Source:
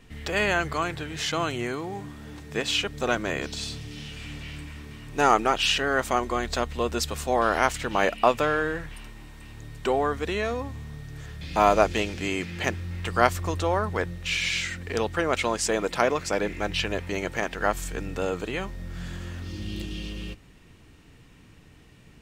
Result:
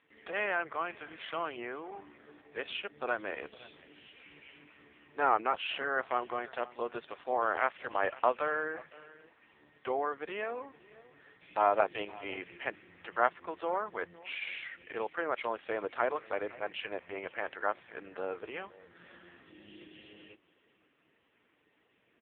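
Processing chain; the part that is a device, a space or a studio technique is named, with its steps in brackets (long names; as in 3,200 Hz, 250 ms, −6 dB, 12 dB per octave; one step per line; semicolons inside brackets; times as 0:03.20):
satellite phone (band-pass filter 400–3,100 Hz; single-tap delay 514 ms −20.5 dB; level −6 dB; AMR narrowband 5.15 kbit/s 8,000 Hz)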